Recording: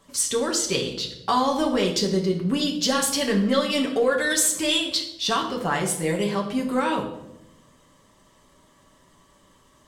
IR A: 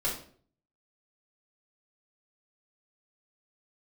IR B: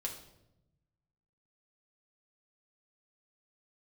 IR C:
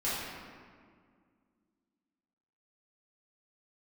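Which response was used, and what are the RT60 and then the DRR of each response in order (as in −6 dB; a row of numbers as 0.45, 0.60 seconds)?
B; 0.50, 0.85, 2.0 seconds; −5.0, −0.5, −10.5 decibels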